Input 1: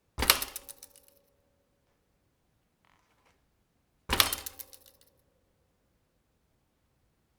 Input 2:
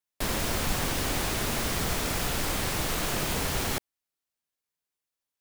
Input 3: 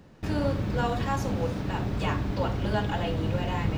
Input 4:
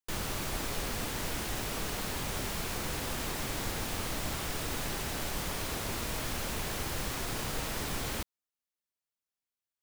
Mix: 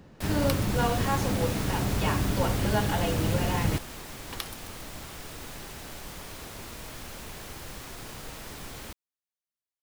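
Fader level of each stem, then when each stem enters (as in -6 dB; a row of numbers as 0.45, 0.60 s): -13.5, -7.0, +1.0, -6.0 dB; 0.20, 0.00, 0.00, 0.70 s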